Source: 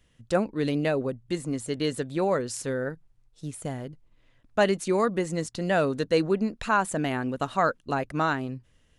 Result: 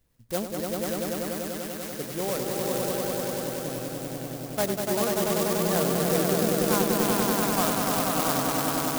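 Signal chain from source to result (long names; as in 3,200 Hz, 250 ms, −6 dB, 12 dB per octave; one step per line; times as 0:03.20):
0:00.60–0:01.92: high-pass filter 1,200 Hz 24 dB per octave
echo that builds up and dies away 97 ms, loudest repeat 5, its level −3 dB
converter with an unsteady clock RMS 0.12 ms
level −5.5 dB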